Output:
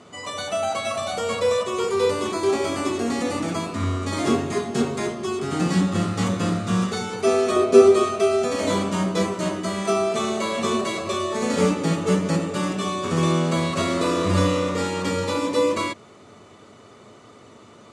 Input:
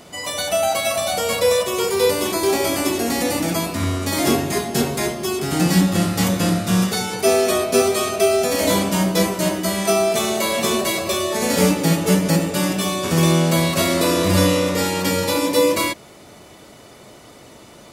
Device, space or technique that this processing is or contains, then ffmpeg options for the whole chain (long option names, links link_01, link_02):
car door speaker: -filter_complex "[0:a]asettb=1/sr,asplit=3[link_01][link_02][link_03];[link_01]atrim=end=7.564[link_04];[link_02]atrim=start=7.56:end=8.05,asetpts=PTS-STARTPTS,afade=type=in:duration=0.004:curve=qsin,afade=type=out:start_time=0.486:duration=0.004:curve=qsin,equalizer=frequency=380:width_type=o:width=1:gain=8[link_05];[link_03]atrim=start=8.046[link_06];[link_04][link_05]acrossfade=duration=0.004:curve1=hsin:curve2=qsin[link_07];[link_07][link_06]acrossfade=duration=0.004:curve1=qsin:curve2=hsin,highpass=90,equalizer=frequency=100:width_type=q:width=4:gain=10,equalizer=frequency=230:width_type=q:width=4:gain=6,equalizer=frequency=420:width_type=q:width=4:gain=6,equalizer=frequency=1200:width_type=q:width=4:gain=9,equalizer=frequency=5200:width_type=q:width=4:gain=-5,lowpass=frequency=8100:width=0.5412,lowpass=frequency=8100:width=1.3066,volume=-6.5dB"